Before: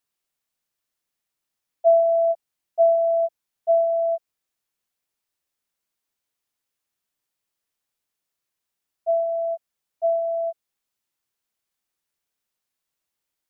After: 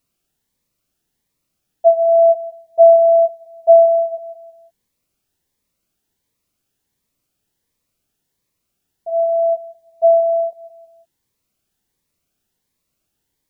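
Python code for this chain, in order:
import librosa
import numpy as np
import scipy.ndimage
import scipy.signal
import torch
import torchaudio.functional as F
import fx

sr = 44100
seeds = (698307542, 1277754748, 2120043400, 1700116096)

y = fx.low_shelf(x, sr, hz=500.0, db=11.5)
y = fx.echo_feedback(y, sr, ms=176, feedback_pct=34, wet_db=-16.0)
y = fx.notch_cascade(y, sr, direction='rising', hz=1.4)
y = F.gain(torch.from_numpy(y), 7.5).numpy()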